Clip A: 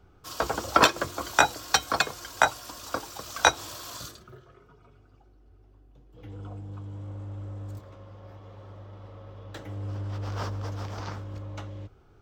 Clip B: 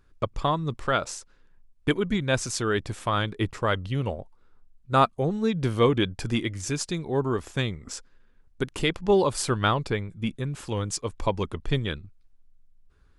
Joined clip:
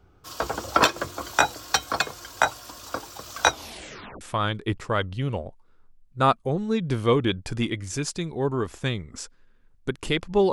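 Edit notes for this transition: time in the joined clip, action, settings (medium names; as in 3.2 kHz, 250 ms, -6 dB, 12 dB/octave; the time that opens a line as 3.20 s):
clip A
3.50 s: tape stop 0.71 s
4.21 s: go over to clip B from 2.94 s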